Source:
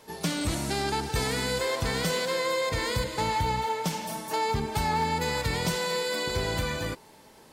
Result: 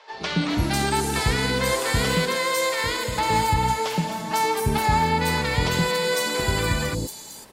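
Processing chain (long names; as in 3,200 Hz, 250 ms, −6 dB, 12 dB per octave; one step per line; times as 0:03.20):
0:02.24–0:03.06: low-shelf EQ 300 Hz −9.5 dB
three-band delay without the direct sound mids, lows, highs 120/500 ms, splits 540/5,000 Hz
level +7 dB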